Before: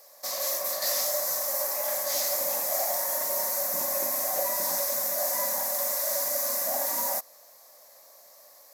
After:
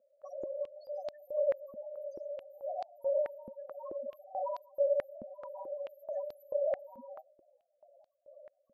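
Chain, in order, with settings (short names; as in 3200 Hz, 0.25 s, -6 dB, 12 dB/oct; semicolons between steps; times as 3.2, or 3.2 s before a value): low shelf 410 Hz +7.5 dB; wavefolder -27.5 dBFS; loudest bins only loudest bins 4; dynamic EQ 560 Hz, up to +7 dB, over -54 dBFS, Q 1.1; stepped band-pass 4.6 Hz 230–4400 Hz; gain +8 dB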